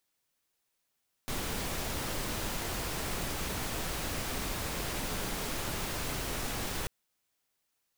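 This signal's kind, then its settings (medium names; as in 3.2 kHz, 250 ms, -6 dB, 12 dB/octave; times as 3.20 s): noise pink, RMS -35 dBFS 5.59 s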